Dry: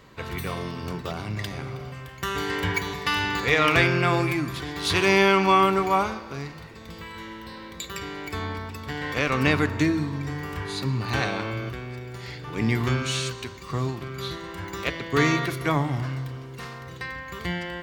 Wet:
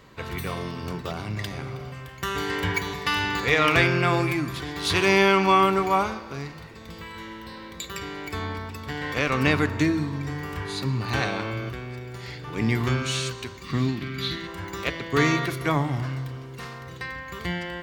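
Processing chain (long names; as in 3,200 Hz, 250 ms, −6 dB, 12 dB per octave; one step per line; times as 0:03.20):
0:13.64–0:14.47: graphic EQ with 10 bands 250 Hz +10 dB, 500 Hz −7 dB, 1,000 Hz −5 dB, 2,000 Hz +7 dB, 4,000 Hz +6 dB, 8,000 Hz −4 dB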